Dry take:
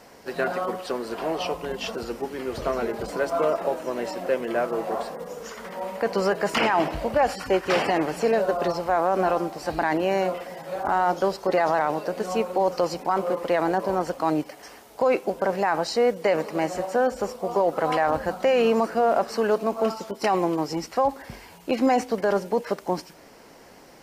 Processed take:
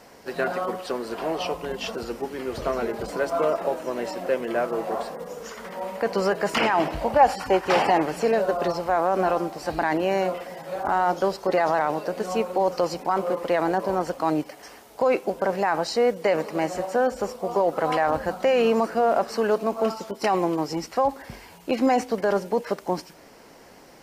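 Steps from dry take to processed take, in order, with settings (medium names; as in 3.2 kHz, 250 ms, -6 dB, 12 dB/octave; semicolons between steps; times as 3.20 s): 7.01–8.02 s: peaking EQ 850 Hz +8 dB 0.52 oct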